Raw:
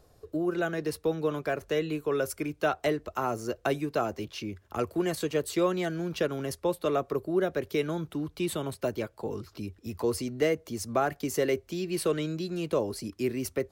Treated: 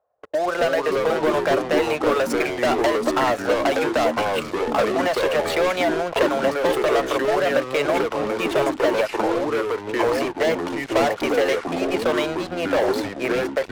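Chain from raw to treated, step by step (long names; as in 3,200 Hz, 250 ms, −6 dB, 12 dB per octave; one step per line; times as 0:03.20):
high-pass filter 58 Hz
low shelf with overshoot 460 Hz −8.5 dB, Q 3
low-pass that shuts in the quiet parts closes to 1,300 Hz, open at −22 dBFS
bass and treble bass −14 dB, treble −6 dB
leveller curve on the samples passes 5
downward compressor, threshold −19 dBFS, peak gain reduction 6 dB
delay with pitch and tempo change per echo 181 ms, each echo −4 semitones, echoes 3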